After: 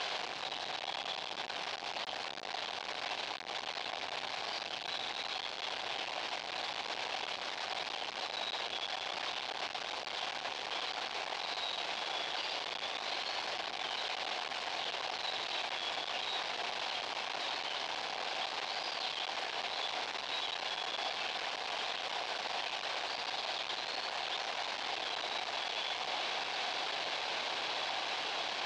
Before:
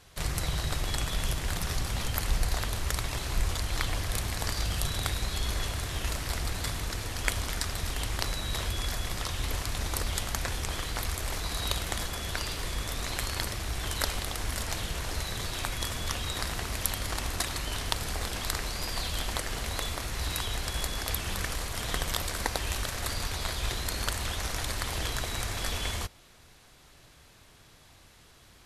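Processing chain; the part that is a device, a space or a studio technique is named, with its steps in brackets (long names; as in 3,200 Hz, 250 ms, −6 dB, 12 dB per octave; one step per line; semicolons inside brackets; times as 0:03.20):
home computer beeper (sign of each sample alone; loudspeaker in its box 610–4,300 Hz, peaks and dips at 760 Hz +6 dB, 1,300 Hz −6 dB, 1,900 Hz −5 dB)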